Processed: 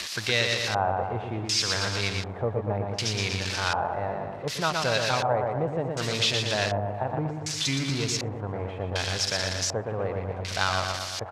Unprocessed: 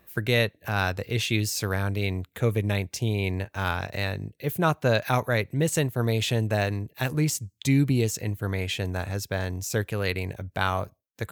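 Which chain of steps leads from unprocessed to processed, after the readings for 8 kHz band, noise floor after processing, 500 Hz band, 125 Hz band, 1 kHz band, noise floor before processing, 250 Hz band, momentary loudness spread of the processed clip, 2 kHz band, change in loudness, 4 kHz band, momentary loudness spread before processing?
+2.5 dB, -36 dBFS, -0.5 dB, -5.5 dB, +3.0 dB, -69 dBFS, -5.5 dB, 7 LU, 0.0 dB, -0.5 dB, +6.0 dB, 6 LU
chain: zero-crossing glitches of -16 dBFS; on a send: feedback delay 118 ms, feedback 60%, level -4.5 dB; on the sum: compression 2.5:1, threshold -22 dBFS, peak gain reduction 5.5 dB; low-pass 12 kHz 12 dB/octave; peaking EQ 350 Hz -5.5 dB 1.5 oct; in parallel at -7.5 dB: hysteresis with a dead band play -23 dBFS; on the sum: LFO low-pass square 0.67 Hz 800–5000 Hz; tone controls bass -7 dB, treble -4 dB; Vorbis 128 kbps 32 kHz

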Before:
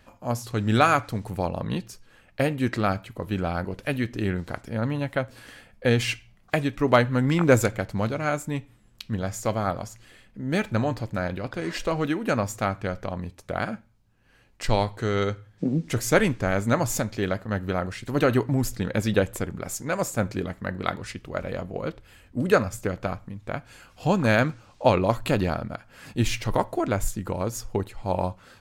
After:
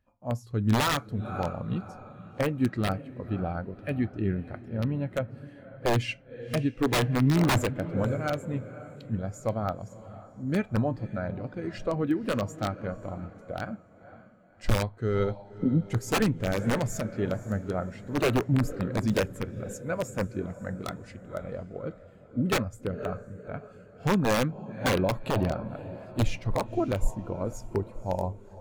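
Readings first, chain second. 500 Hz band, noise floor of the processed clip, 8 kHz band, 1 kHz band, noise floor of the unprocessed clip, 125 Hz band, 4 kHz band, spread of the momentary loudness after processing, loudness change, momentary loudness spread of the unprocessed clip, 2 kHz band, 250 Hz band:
-5.0 dB, -52 dBFS, -6.0 dB, -6.0 dB, -58 dBFS, -2.0 dB, -2.5 dB, 13 LU, -3.5 dB, 12 LU, -6.0 dB, -2.0 dB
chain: echo that smears into a reverb 532 ms, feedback 52%, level -10.5 dB; integer overflow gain 13 dB; spectral contrast expander 1.5:1

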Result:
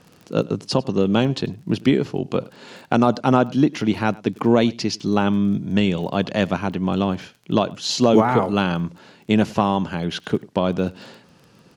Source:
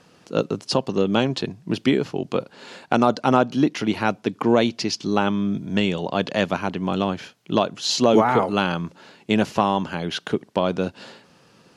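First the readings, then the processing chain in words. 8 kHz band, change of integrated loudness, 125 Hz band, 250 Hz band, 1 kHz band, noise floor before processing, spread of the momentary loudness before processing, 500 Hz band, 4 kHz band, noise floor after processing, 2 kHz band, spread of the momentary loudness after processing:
-1.0 dB, +1.5 dB, +4.5 dB, +3.0 dB, -0.5 dB, -56 dBFS, 9 LU, +0.5 dB, -1.0 dB, -53 dBFS, -1.0 dB, 9 LU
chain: bass shelf 230 Hz +8 dB; crackle 16 per s -33 dBFS; on a send: delay 99 ms -23.5 dB; on the sum: trim -1 dB

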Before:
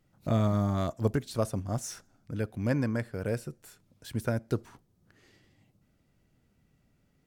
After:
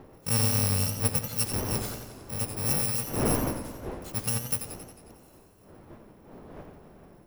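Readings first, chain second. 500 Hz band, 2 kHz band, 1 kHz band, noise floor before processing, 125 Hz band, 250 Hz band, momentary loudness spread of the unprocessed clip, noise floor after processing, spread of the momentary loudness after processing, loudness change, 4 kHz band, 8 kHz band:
-2.5 dB, +2.5 dB, +2.0 dB, -70 dBFS, 0.0 dB, -2.0 dB, 13 LU, -55 dBFS, 16 LU, +4.0 dB, +12.0 dB, +15.5 dB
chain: bit-reversed sample order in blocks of 128 samples; wind noise 500 Hz -39 dBFS; modulated delay 90 ms, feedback 65%, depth 95 cents, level -8.5 dB

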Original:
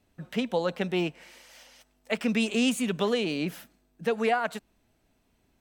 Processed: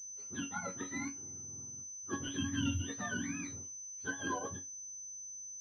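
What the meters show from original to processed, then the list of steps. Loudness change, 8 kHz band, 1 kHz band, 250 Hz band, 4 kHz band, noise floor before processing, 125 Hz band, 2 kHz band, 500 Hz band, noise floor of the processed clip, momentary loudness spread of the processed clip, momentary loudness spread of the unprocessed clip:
-11.0 dB, +6.0 dB, -11.5 dB, -11.0 dB, -11.0 dB, -70 dBFS, -4.5 dB, -8.0 dB, -20.0 dB, -47 dBFS, 8 LU, 9 LU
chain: spectrum inverted on a logarithmic axis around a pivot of 850 Hz; chord resonator F#2 major, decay 0.2 s; class-D stage that switches slowly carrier 6.1 kHz; trim +1 dB

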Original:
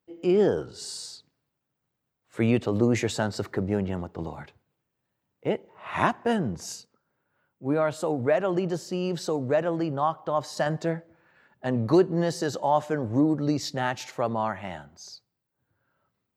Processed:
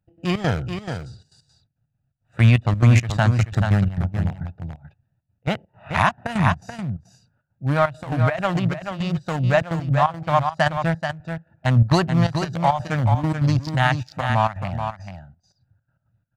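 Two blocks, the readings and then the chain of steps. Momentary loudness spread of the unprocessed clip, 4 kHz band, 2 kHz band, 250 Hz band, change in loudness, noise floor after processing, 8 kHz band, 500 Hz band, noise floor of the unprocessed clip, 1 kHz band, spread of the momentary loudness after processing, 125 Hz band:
14 LU, +5.5 dB, +9.5 dB, +2.0 dB, +5.5 dB, -74 dBFS, no reading, -0.5 dB, -82 dBFS, +7.0 dB, 14 LU, +13.5 dB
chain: local Wiener filter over 41 samples; trance gate "x.xx.xxxx." 170 bpm -12 dB; FFT filter 120 Hz 0 dB, 420 Hz -25 dB, 680 Hz -7 dB, 2.5 kHz -2 dB; delay 432 ms -7.5 dB; loudness maximiser +20.5 dB; trim -4 dB

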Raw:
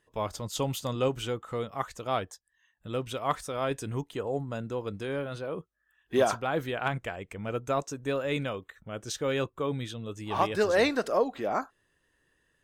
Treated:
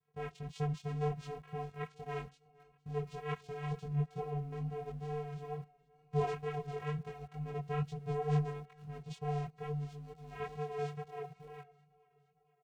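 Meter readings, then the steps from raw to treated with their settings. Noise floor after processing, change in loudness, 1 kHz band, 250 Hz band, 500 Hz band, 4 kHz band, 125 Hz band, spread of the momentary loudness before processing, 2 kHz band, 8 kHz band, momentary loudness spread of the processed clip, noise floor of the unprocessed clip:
-73 dBFS, -8.5 dB, -9.5 dB, -8.5 dB, -11.0 dB, -18.0 dB, 0.0 dB, 11 LU, -14.5 dB, under -20 dB, 11 LU, -74 dBFS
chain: fade out at the end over 4.00 s; vocoder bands 4, square 147 Hz; on a send: feedback delay 464 ms, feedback 56%, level -21.5 dB; on the sum: chorus voices 6, 1 Hz, delay 21 ms, depth 3 ms; in parallel at -10 dB: small samples zeroed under -49 dBFS; on the sum: vibrato 2.2 Hz 21 cents; trim -4 dB

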